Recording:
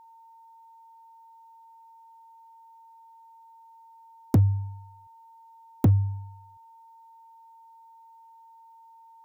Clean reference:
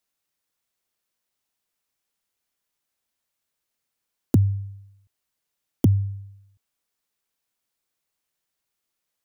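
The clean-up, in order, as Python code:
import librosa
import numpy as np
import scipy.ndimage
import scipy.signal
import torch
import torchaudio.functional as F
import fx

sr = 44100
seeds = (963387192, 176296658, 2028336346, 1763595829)

y = fx.fix_declip(x, sr, threshold_db=-14.0)
y = fx.notch(y, sr, hz=910.0, q=30.0)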